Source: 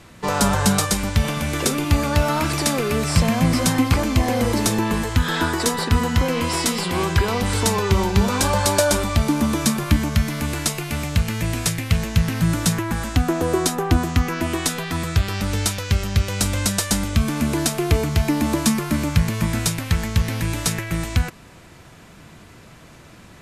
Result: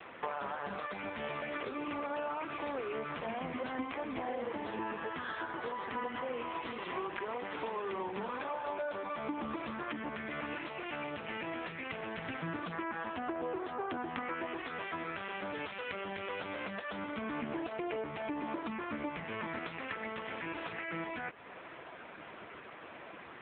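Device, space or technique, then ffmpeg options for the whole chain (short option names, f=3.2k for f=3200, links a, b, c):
voicemail: -af "highpass=400,lowpass=2.8k,acompressor=threshold=-38dB:ratio=12,volume=5dB" -ar 8000 -c:a libopencore_amrnb -b:a 5900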